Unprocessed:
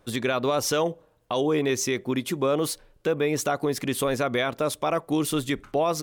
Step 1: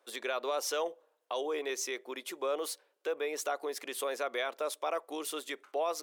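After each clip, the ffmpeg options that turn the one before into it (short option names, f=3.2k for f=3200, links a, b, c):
-af "highpass=f=410:w=0.5412,highpass=f=410:w=1.3066,volume=-8dB"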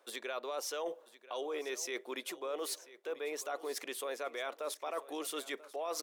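-af "areverse,acompressor=threshold=-44dB:ratio=4,areverse,aecho=1:1:989|1978|2967:0.133|0.048|0.0173,volume=6dB"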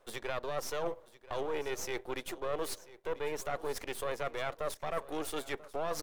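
-filter_complex "[0:a]aeval=exprs='if(lt(val(0),0),0.251*val(0),val(0))':c=same,asplit=2[a][b];[b]adynamicsmooth=sensitivity=8:basefreq=1.7k,volume=-2.5dB[c];[a][c]amix=inputs=2:normalize=0,volume=2dB"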